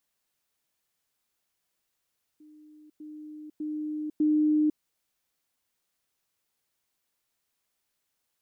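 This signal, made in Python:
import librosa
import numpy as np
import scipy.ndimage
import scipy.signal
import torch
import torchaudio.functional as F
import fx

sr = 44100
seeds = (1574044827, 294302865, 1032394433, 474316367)

y = fx.level_ladder(sr, hz=304.0, from_db=-50.0, step_db=10.0, steps=4, dwell_s=0.5, gap_s=0.1)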